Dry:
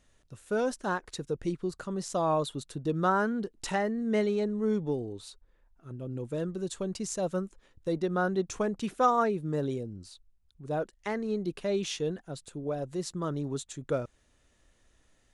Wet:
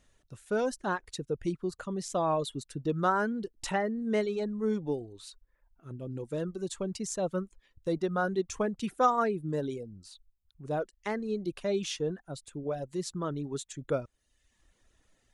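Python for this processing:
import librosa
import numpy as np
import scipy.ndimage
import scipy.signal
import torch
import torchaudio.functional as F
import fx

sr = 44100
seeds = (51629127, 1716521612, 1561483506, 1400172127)

y = fx.dereverb_blind(x, sr, rt60_s=0.79)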